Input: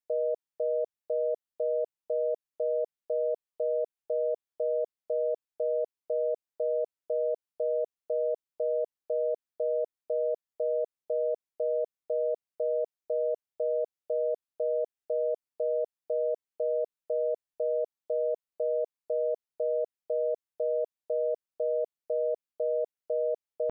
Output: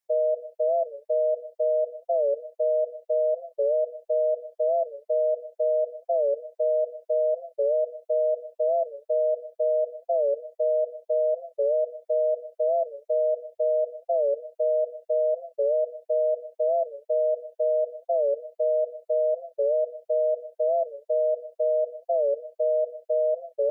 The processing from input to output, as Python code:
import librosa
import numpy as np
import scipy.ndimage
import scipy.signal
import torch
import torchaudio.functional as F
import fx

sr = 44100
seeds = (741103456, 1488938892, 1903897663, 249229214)

y = fx.spec_expand(x, sr, power=1.6)
y = fx.low_shelf_res(y, sr, hz=480.0, db=-6.5, q=1.5)
y = fx.rev_gated(y, sr, seeds[0], gate_ms=210, shape='falling', drr_db=6.5)
y = fx.record_warp(y, sr, rpm=45.0, depth_cents=160.0)
y = y * 10.0 ** (5.5 / 20.0)